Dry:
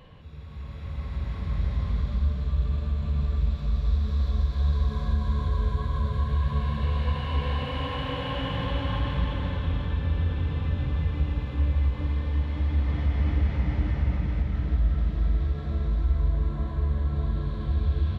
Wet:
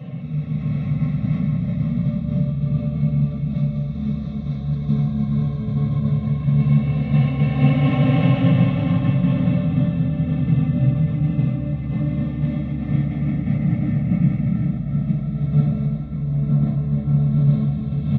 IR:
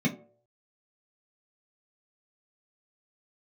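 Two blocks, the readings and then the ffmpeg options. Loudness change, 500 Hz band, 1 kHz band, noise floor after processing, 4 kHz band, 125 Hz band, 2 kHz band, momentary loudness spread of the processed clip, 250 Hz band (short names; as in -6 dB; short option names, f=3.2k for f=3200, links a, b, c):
+7.5 dB, +5.5 dB, +0.5 dB, -27 dBFS, n/a, +8.5 dB, +2.5 dB, 7 LU, +16.0 dB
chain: -filter_complex "[0:a]aecho=1:1:1.5:0.57,areverse,acompressor=threshold=-27dB:ratio=10,areverse[a];[1:a]atrim=start_sample=2205[b];[a][b]afir=irnorm=-1:irlink=0"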